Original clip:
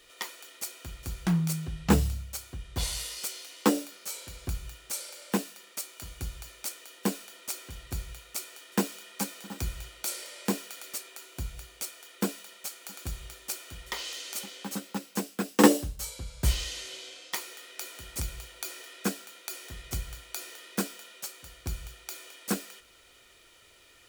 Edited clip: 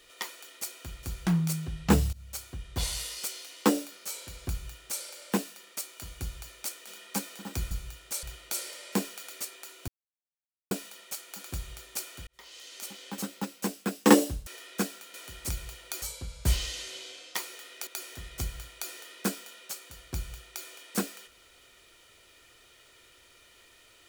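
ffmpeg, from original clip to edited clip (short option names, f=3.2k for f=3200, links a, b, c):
-filter_complex "[0:a]asplit=12[a][b][c][d][e][f][g][h][i][j][k][l];[a]atrim=end=2.13,asetpts=PTS-STARTPTS,afade=t=out:st=2.126:d=0.004:c=hsin:silence=0.0749894[m];[b]atrim=start=2.13:end=6.872,asetpts=PTS-STARTPTS,afade=t=in:d=0.25:silence=0.0749894[n];[c]atrim=start=8.918:end=9.762[o];[d]atrim=start=4.498:end=5.022[p];[e]atrim=start=9.758:end=11.41,asetpts=PTS-STARTPTS,afade=t=out:st=1.648:d=0.004:c=hsin[q];[f]atrim=start=11.41:end=12.24,asetpts=PTS-STARTPTS,volume=0[r];[g]atrim=start=12.24:end=13.8,asetpts=PTS-STARTPTS,afade=t=in:d=0.004:c=hsin,afade=t=out:st=1.556:d=0.004:c=hsin[s];[h]atrim=start=13.8:end=16.002,asetpts=PTS-STARTPTS,afade=t=in:d=0.95[t];[i]atrim=start=18.728:end=19.402[u];[j]atrim=start=17.848:end=18.732[v];[k]atrim=start=15.998:end=17.852[w];[l]atrim=start=19.398[x];[m][n]concat=n=2:v=0:a=1[y];[y][o]acrossfade=d=0.004:c1=hsin:c2=hsin[z];[z][p]acrossfade=d=0.004:c1=hsin:c2=hsin[aa];[q][r][s][t]concat=n=4:v=0:a=1[ab];[aa][ab]acrossfade=d=0.004:c1=hsin:c2=hsin[ac];[ac][u]acrossfade=d=0.004:c1=hsin:c2=hsin[ad];[ad][v]acrossfade=d=0.004:c1=hsin:c2=hsin[ae];[ae][w]acrossfade=d=0.004:c1=hsin:c2=hsin[af];[af][x]acrossfade=d=0.004:c1=hsin:c2=hsin"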